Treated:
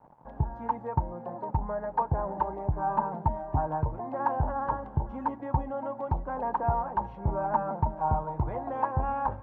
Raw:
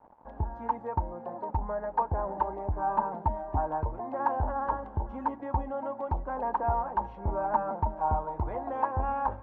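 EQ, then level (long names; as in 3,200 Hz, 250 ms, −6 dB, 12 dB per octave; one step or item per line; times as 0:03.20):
parametric band 140 Hz +14 dB 0.52 octaves
0.0 dB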